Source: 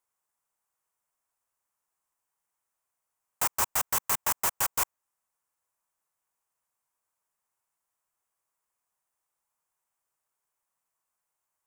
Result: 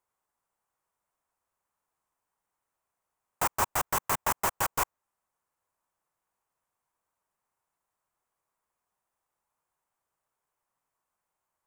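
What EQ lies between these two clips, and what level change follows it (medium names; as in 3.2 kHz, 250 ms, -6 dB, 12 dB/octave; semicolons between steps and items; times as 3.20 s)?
treble shelf 2.2 kHz -10.5 dB; +5.5 dB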